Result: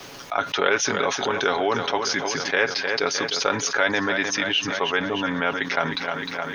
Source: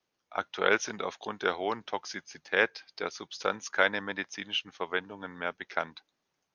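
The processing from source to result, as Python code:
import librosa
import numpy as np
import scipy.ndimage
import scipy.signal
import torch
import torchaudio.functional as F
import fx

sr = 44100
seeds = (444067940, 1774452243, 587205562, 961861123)

p1 = x + 0.49 * np.pad(x, (int(7.2 * sr / 1000.0), 0))[:len(x)]
p2 = p1 + fx.echo_feedback(p1, sr, ms=307, feedback_pct=57, wet_db=-16, dry=0)
p3 = fx.env_flatten(p2, sr, amount_pct=70)
y = p3 * 10.0 ** (1.0 / 20.0)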